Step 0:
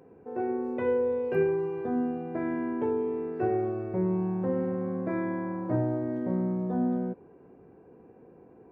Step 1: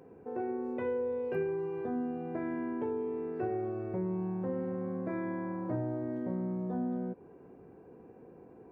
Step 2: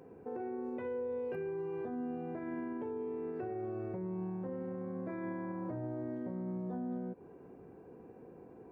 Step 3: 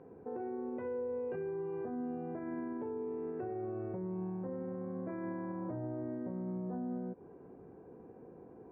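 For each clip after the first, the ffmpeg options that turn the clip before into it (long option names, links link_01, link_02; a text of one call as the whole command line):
ffmpeg -i in.wav -af "acompressor=threshold=-36dB:ratio=2" out.wav
ffmpeg -i in.wav -af "alimiter=level_in=8dB:limit=-24dB:level=0:latency=1:release=116,volume=-8dB" out.wav
ffmpeg -i in.wav -af "lowpass=1700" out.wav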